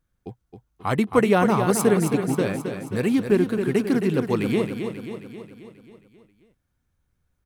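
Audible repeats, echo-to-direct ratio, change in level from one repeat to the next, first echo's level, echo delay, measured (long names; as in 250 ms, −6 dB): 6, −6.0 dB, −5.0 dB, −7.5 dB, 268 ms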